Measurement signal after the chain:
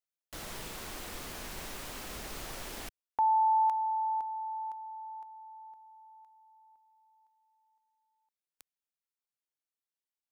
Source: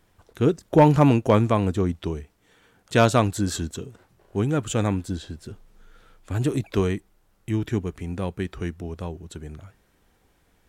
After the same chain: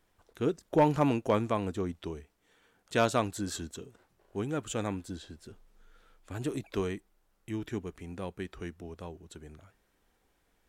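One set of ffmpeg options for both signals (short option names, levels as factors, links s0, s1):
-af "equalizer=f=110:w=0.81:g=-7,volume=0.422"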